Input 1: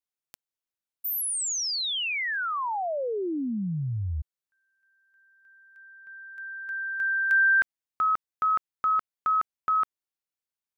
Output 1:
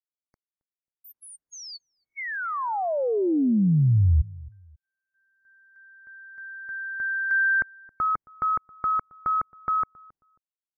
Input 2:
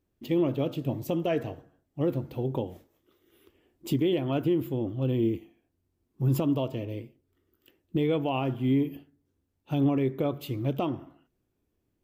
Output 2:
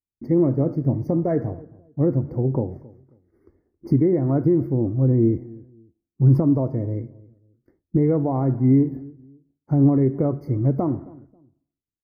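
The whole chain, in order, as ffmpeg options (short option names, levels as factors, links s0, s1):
-filter_complex "[0:a]agate=range=0.0224:threshold=0.00141:ratio=3:release=348:detection=peak,lowpass=f=1100:p=1,lowshelf=f=310:g=9,asplit=2[s0][s1];[s1]adelay=270,lowpass=f=870:p=1,volume=0.0891,asplit=2[s2][s3];[s3]adelay=270,lowpass=f=870:p=1,volume=0.28[s4];[s0][s2][s4]amix=inputs=3:normalize=0,afftfilt=real='re*eq(mod(floor(b*sr/1024/2200),2),0)':imag='im*eq(mod(floor(b*sr/1024/2200),2),0)':win_size=1024:overlap=0.75,volume=1.41"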